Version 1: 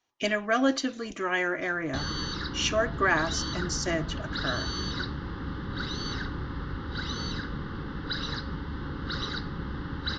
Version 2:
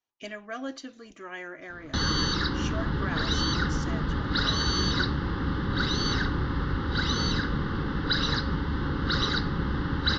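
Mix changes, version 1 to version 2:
speech -11.5 dB; background +6.5 dB

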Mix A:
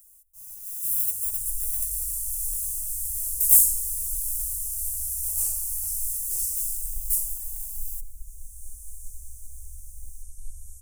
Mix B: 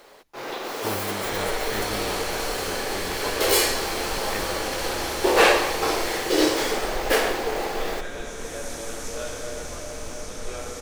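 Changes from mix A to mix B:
first sound -11.5 dB; master: remove inverse Chebyshev band-stop 170–4000 Hz, stop band 50 dB

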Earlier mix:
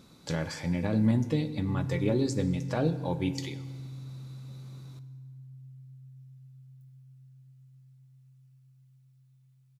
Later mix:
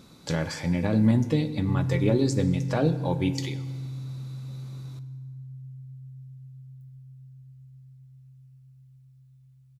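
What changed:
speech +4.0 dB; background: remove HPF 180 Hz 12 dB/oct

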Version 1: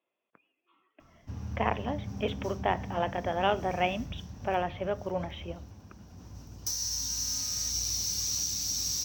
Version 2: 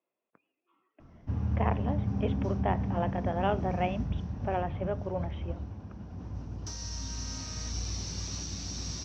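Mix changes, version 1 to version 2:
background +8.0 dB; master: add tape spacing loss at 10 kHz 31 dB

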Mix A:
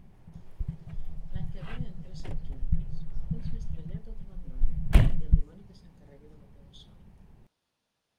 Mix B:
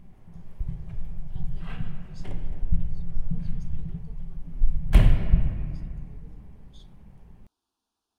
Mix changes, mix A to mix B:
speech: add fixed phaser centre 550 Hz, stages 6; reverb: on, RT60 2.2 s

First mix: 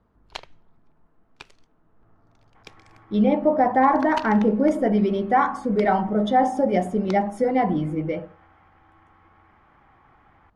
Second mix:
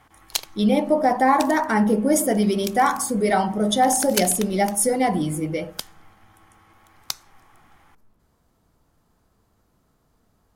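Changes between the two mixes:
speech: entry -2.55 s; master: remove LPF 2000 Hz 12 dB/oct

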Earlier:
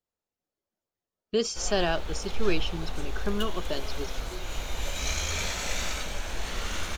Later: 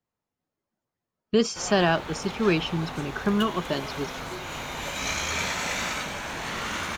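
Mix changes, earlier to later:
background: add HPF 220 Hz 6 dB/oct; master: add graphic EQ 125/250/1000/2000 Hz +12/+6/+7/+5 dB

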